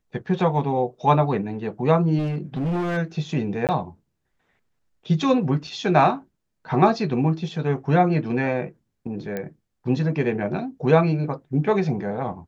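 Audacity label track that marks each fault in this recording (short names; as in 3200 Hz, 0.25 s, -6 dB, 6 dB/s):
2.180000	2.980000	clipped -21.5 dBFS
3.670000	3.690000	gap 18 ms
5.670000	5.670000	gap 4.1 ms
9.370000	9.370000	pop -16 dBFS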